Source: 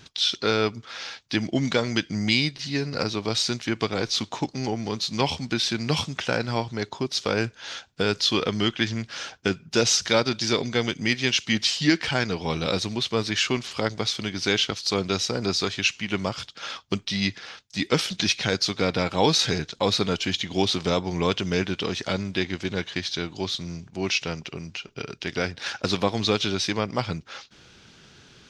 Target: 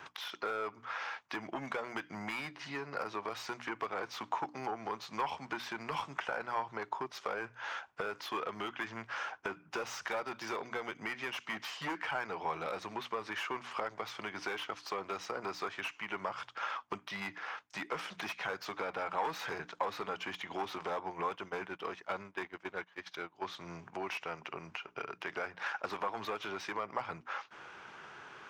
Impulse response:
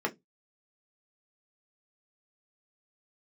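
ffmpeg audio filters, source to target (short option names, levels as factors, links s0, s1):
-filter_complex "[0:a]asoftclip=type=hard:threshold=0.0944,bandreject=f=60:t=h:w=6,bandreject=f=120:t=h:w=6,bandreject=f=180:t=h:w=6,bandreject=f=240:t=h:w=6,bandreject=f=300:t=h:w=6,asplit=3[s0][s1][s2];[s0]afade=t=out:st=21.09:d=0.02[s3];[s1]agate=range=0.112:threshold=0.0398:ratio=16:detection=peak,afade=t=in:st=21.09:d=0.02,afade=t=out:st=23.42:d=0.02[s4];[s2]afade=t=in:st=23.42:d=0.02[s5];[s3][s4][s5]amix=inputs=3:normalize=0,acrossover=split=270 3200:gain=0.0708 1 0.2[s6][s7][s8];[s6][s7][s8]amix=inputs=3:normalize=0,acompressor=threshold=0.00562:ratio=2.5,equalizer=f=125:t=o:w=1:g=4,equalizer=f=250:t=o:w=1:g=-7,equalizer=f=500:t=o:w=1:g=-4,equalizer=f=1000:t=o:w=1:g=8,equalizer=f=4000:t=o:w=1:g=-10,volume=1.78"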